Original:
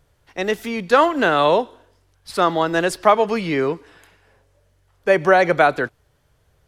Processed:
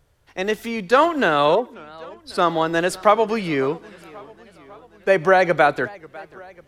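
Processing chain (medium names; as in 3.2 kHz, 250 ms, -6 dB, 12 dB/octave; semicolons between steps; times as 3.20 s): 1.55–2.38 s: spectral contrast enhancement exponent 1.5; modulated delay 543 ms, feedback 64%, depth 193 cents, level -22.5 dB; trim -1 dB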